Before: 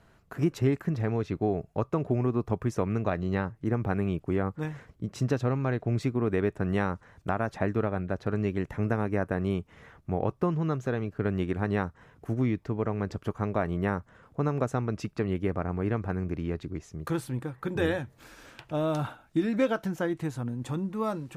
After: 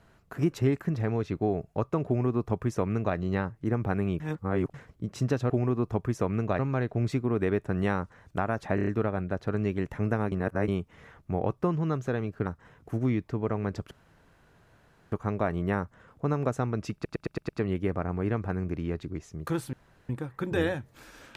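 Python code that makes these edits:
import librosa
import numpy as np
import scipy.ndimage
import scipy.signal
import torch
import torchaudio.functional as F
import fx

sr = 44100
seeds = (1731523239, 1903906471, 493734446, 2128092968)

y = fx.edit(x, sr, fx.duplicate(start_s=2.07, length_s=1.09, to_s=5.5),
    fx.reverse_span(start_s=4.2, length_s=0.54),
    fx.stutter(start_s=7.66, slice_s=0.03, count=5),
    fx.reverse_span(start_s=9.11, length_s=0.36),
    fx.cut(start_s=11.25, length_s=0.57),
    fx.insert_room_tone(at_s=13.27, length_s=1.21),
    fx.stutter(start_s=15.09, slice_s=0.11, count=6),
    fx.insert_room_tone(at_s=17.33, length_s=0.36), tone=tone)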